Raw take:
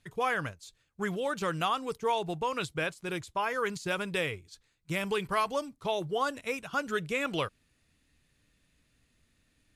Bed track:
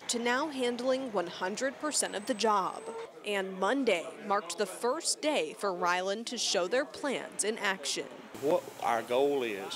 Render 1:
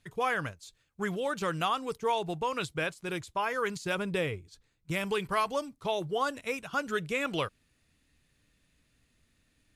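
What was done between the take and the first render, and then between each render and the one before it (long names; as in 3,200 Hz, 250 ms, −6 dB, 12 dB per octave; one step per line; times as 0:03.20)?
0:03.95–0:04.91: tilt shelving filter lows +4 dB, about 840 Hz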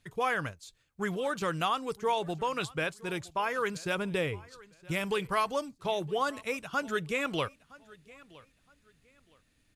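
repeating echo 966 ms, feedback 26%, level −22 dB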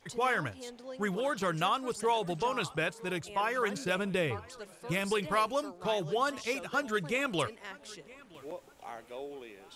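mix in bed track −14.5 dB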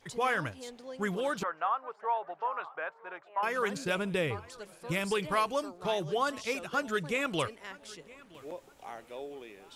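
0:01.43–0:03.43: flat-topped band-pass 1,000 Hz, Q 1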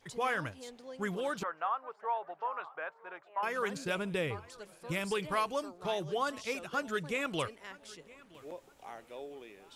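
level −3 dB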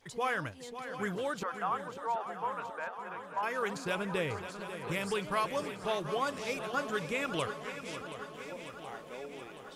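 feedback echo with a long and a short gap by turns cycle 725 ms, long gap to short 3 to 1, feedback 64%, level −11 dB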